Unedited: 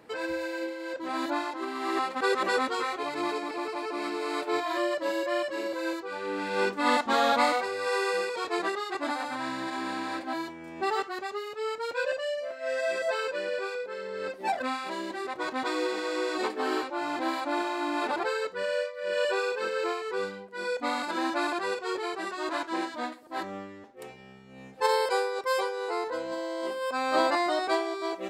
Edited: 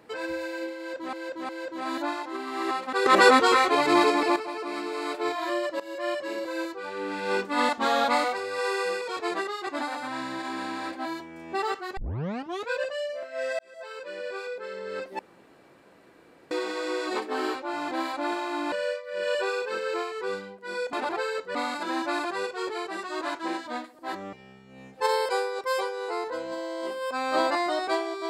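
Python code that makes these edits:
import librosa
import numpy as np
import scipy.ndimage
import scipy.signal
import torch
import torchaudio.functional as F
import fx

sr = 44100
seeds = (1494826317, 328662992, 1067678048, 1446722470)

y = fx.edit(x, sr, fx.repeat(start_s=0.77, length_s=0.36, count=3),
    fx.clip_gain(start_s=2.34, length_s=1.3, db=10.5),
    fx.fade_in_from(start_s=5.08, length_s=0.3, floor_db=-18.5),
    fx.tape_start(start_s=11.25, length_s=0.72),
    fx.fade_in_span(start_s=12.87, length_s=0.99),
    fx.room_tone_fill(start_s=14.47, length_s=1.32),
    fx.move(start_s=18.0, length_s=0.62, to_s=20.83),
    fx.cut(start_s=23.61, length_s=0.52), tone=tone)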